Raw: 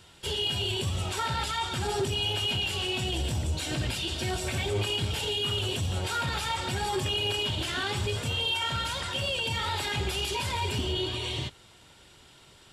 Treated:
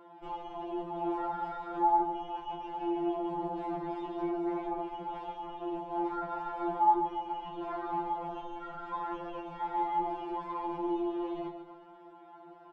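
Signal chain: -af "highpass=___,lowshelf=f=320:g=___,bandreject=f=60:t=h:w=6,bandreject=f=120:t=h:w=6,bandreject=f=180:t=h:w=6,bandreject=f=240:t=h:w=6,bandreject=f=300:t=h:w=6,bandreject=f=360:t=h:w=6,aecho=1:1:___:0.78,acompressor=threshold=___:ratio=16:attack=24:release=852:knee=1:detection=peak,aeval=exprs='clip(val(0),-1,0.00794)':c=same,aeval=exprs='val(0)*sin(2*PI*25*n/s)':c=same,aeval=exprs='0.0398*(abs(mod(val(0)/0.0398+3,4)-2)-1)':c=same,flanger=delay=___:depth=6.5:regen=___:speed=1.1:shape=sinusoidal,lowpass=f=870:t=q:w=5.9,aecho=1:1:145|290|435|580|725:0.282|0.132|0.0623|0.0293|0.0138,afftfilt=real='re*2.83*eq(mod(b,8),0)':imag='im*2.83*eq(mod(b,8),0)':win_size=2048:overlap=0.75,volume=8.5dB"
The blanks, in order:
240, 7.5, 2.8, -29dB, 9.3, -59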